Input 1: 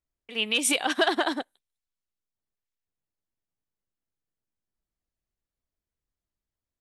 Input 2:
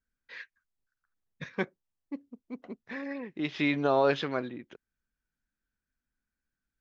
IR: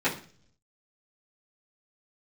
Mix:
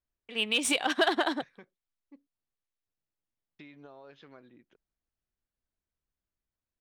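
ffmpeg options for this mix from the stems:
-filter_complex "[0:a]adynamicsmooth=sensitivity=4:basefreq=6000,volume=0.794[s0];[1:a]acompressor=threshold=0.0282:ratio=12,volume=0.158,asplit=3[s1][s2][s3];[s1]atrim=end=2.27,asetpts=PTS-STARTPTS,afade=t=out:st=2.266:d=0.004:c=hsin[s4];[s2]atrim=start=2.27:end=3.59,asetpts=PTS-STARTPTS,volume=0[s5];[s3]atrim=start=3.59,asetpts=PTS-STARTPTS,afade=t=in:d=0.004:c=hsin[s6];[s4][s5][s6]concat=n=3:v=0:a=1[s7];[s0][s7]amix=inputs=2:normalize=0"

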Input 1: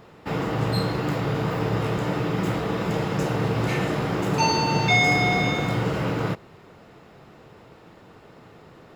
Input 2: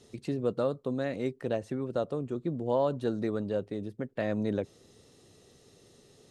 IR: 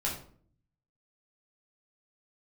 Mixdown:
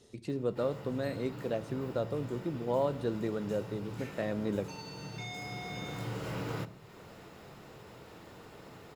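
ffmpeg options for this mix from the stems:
-filter_complex "[0:a]acompressor=threshold=0.0562:ratio=2.5,highshelf=f=5300:g=11,acompressor=mode=upward:threshold=0.0178:ratio=2.5,adelay=300,volume=0.335,asplit=2[s0][s1];[s1]volume=0.15[s2];[1:a]volume=0.631,asplit=3[s3][s4][s5];[s4]volume=0.141[s6];[s5]apad=whole_len=408131[s7];[s0][s7]sidechaincompress=threshold=0.00316:ratio=8:attack=38:release=1390[s8];[2:a]atrim=start_sample=2205[s9];[s2][s6]amix=inputs=2:normalize=0[s10];[s10][s9]afir=irnorm=-1:irlink=0[s11];[s8][s3][s11]amix=inputs=3:normalize=0"

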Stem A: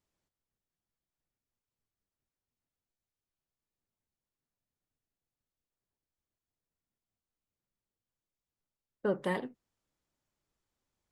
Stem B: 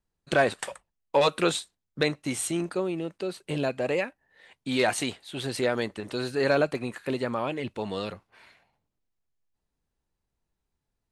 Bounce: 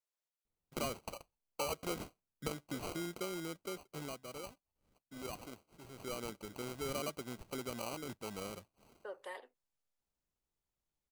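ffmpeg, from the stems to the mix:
-filter_complex "[0:a]highpass=f=470:w=0.5412,highpass=f=470:w=1.3066,volume=0.266[s0];[1:a]acrusher=samples=25:mix=1:aa=0.000001,adelay=450,afade=t=out:st=3.6:d=0.62:silence=0.266073,afade=t=in:st=5.94:d=0.39:silence=0.334965[s1];[s0][s1]amix=inputs=2:normalize=0,highshelf=f=4000:g=5.5,acompressor=threshold=0.0126:ratio=2.5"

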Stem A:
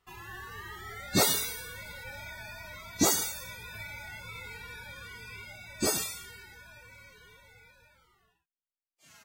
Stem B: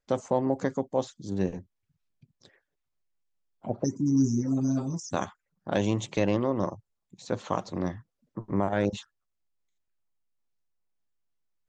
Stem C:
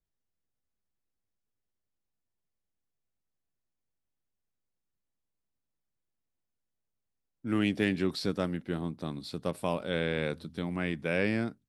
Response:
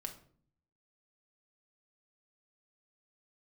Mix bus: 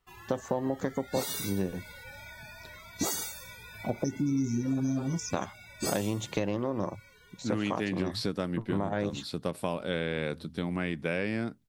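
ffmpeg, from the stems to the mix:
-filter_complex "[0:a]volume=0.668[s0];[1:a]adelay=200,volume=1.41[s1];[2:a]volume=1.41[s2];[s0][s1][s2]amix=inputs=3:normalize=0,acompressor=threshold=0.0501:ratio=6"

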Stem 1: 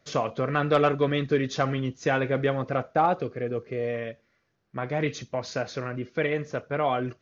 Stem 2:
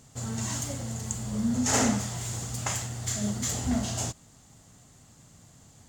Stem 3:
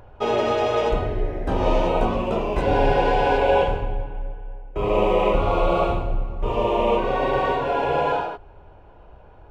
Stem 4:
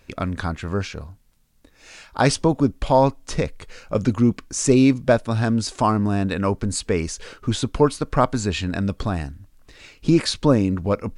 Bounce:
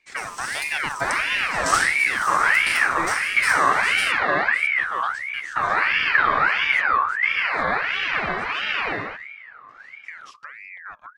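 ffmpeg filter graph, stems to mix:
-filter_complex "[0:a]volume=0.562,asplit=2[s0][s1];[1:a]highpass=850,volume=1.33[s2];[2:a]adelay=800,volume=0.708[s3];[3:a]lowpass=6800,acompressor=threshold=0.0708:ratio=10,volume=0.15[s4];[s1]apad=whole_len=259529[s5];[s2][s5]sidechaingate=range=0.0224:threshold=0.00447:ratio=16:detection=peak[s6];[s0][s6][s3][s4]amix=inputs=4:normalize=0,equalizer=f=76:t=o:w=2.7:g=13,aeval=exprs='val(0)*sin(2*PI*1700*n/s+1700*0.35/1.5*sin(2*PI*1.5*n/s))':c=same"

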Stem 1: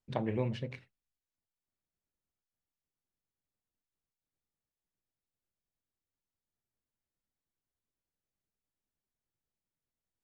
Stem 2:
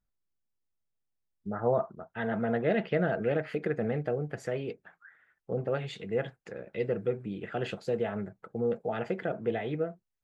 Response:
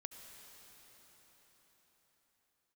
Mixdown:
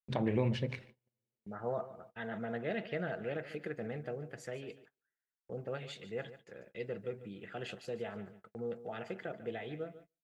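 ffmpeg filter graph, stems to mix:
-filter_complex "[0:a]highshelf=f=2300:g=-8.5,bandreject=f=50:t=h:w=6,bandreject=f=100:t=h:w=6,bandreject=f=150:t=h:w=6,alimiter=limit=0.0631:level=0:latency=1:release=65,volume=1.41,asplit=3[s0][s1][s2];[s1]volume=0.133[s3];[s2]volume=0.0708[s4];[1:a]volume=0.299,asplit=2[s5][s6];[s6]volume=0.188[s7];[2:a]atrim=start_sample=2205[s8];[s3][s8]afir=irnorm=-1:irlink=0[s9];[s4][s7]amix=inputs=2:normalize=0,aecho=0:1:146|292|438|584|730:1|0.33|0.109|0.0359|0.0119[s10];[s0][s5][s9][s10]amix=inputs=4:normalize=0,agate=range=0.0355:threshold=0.00158:ratio=16:detection=peak,highshelf=f=2100:g=9"

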